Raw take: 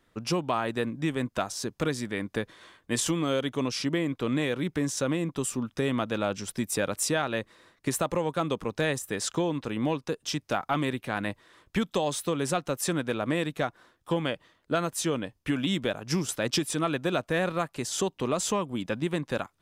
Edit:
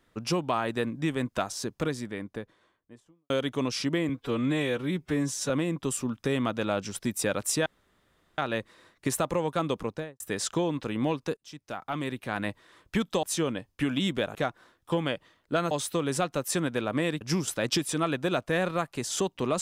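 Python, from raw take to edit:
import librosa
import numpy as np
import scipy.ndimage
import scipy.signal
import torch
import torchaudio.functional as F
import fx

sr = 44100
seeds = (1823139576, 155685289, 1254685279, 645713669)

y = fx.studio_fade_out(x, sr, start_s=1.44, length_s=1.86)
y = fx.studio_fade_out(y, sr, start_s=8.61, length_s=0.4)
y = fx.edit(y, sr, fx.stretch_span(start_s=4.09, length_s=0.94, factor=1.5),
    fx.insert_room_tone(at_s=7.19, length_s=0.72),
    fx.fade_in_from(start_s=10.18, length_s=1.1, floor_db=-23.5),
    fx.swap(start_s=12.04, length_s=1.5, other_s=14.9, other_length_s=1.12), tone=tone)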